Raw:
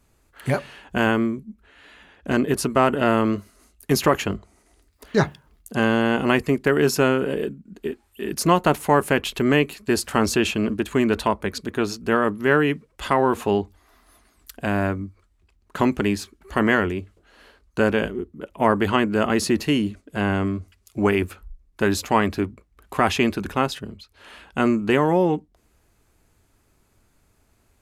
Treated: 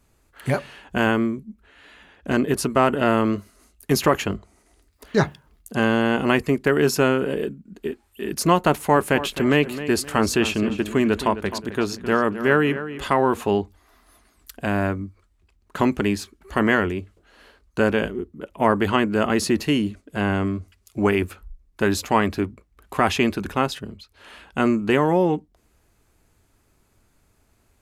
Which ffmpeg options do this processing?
ffmpeg -i in.wav -filter_complex "[0:a]asettb=1/sr,asplit=3[link_01][link_02][link_03];[link_01]atrim=end=8.704[link_04];[link_02]atrim=start=8.7:end=13.04,asetpts=PTS-STARTPTS,afade=type=in:duration=0.004:curve=qsin,afade=type=out:start_time=4.336:duration=0.004:curve=qsin,asplit=2[link_05][link_06];[link_06]adelay=261,lowpass=frequency=3900:poles=1,volume=-12.5dB,asplit=2[link_07][link_08];[link_08]adelay=261,lowpass=frequency=3900:poles=1,volume=0.34,asplit=2[link_09][link_10];[link_10]adelay=261,lowpass=frequency=3900:poles=1,volume=0.34[link_11];[link_05][link_07][link_09][link_11]amix=inputs=4:normalize=0,atrim=end_sample=191394[link_12];[link_03]atrim=start=13.036[link_13];[link_04][link_12]acrossfade=duration=0.004:curve1=hsin:curve2=qsin[link_14];[link_14][link_13]acrossfade=duration=0.004:curve1=qsin:curve2=hsin" out.wav

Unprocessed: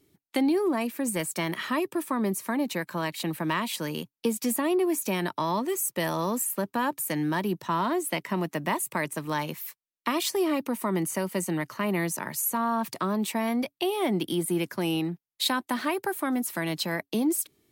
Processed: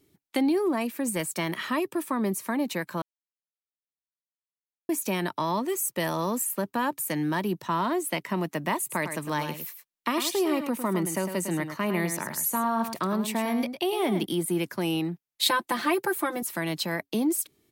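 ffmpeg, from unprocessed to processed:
ffmpeg -i in.wav -filter_complex "[0:a]asplit=3[link_01][link_02][link_03];[link_01]afade=type=out:start_time=8.89:duration=0.02[link_04];[link_02]aecho=1:1:105:0.376,afade=type=in:start_time=8.89:duration=0.02,afade=type=out:start_time=14.24:duration=0.02[link_05];[link_03]afade=type=in:start_time=14.24:duration=0.02[link_06];[link_04][link_05][link_06]amix=inputs=3:normalize=0,asettb=1/sr,asplit=3[link_07][link_08][link_09];[link_07]atrim=end=15.424[link_10];[link_08]atrim=start=15.42:end=16.43,asetpts=PTS-STARTPTS,afade=type=in:duration=0.004:curve=qsin,afade=type=out:start_time=1.006:duration=0.004:curve=qsin,aecho=1:1:5.8:0.99,atrim=end_sample=44541[link_11];[link_09]atrim=start=16.426[link_12];[link_10][link_11]acrossfade=duration=0.004:curve1=hsin:curve2=qsin[link_13];[link_13][link_12]acrossfade=duration=0.004:curve1=qsin:curve2=hsin,asplit=3[link_14][link_15][link_16];[link_14]atrim=end=3.02,asetpts=PTS-STARTPTS,afade=type=out:start_time=3.016:duration=0.004:curve=hsin[link_17];[link_15]atrim=start=3.02:end=4.89,asetpts=PTS-STARTPTS,volume=0[link_18];[link_16]atrim=start=4.89,asetpts=PTS-STARTPTS,afade=type=in:duration=0.004:curve=hsin[link_19];[link_17][link_18][link_19]concat=n=3:v=0:a=1" out.wav

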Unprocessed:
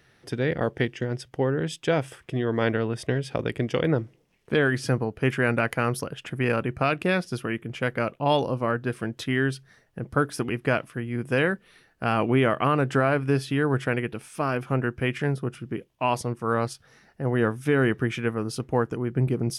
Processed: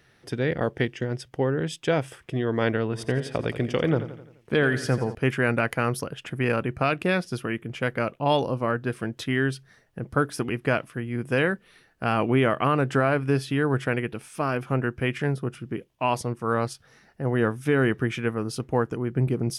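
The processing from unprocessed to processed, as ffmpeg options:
ffmpeg -i in.wav -filter_complex "[0:a]asettb=1/sr,asplit=3[link_01][link_02][link_03];[link_01]atrim=end=2.834[link_04];[link_02]atrim=start=2.83:end=5.15,asetpts=PTS-STARTPTS,afade=type=in:duration=0.004:curve=qsin,afade=type=out:start_time=2.316:duration=0.004:curve=qsin,aecho=1:1:86|172|258|344|430:0.251|0.128|0.0653|0.0333|0.017,atrim=end_sample=102312[link_05];[link_03]atrim=start=5.146[link_06];[link_04][link_05]acrossfade=duration=0.004:curve1=hsin:curve2=qsin[link_07];[link_07][link_06]acrossfade=duration=0.004:curve1=qsin:curve2=hsin" out.wav

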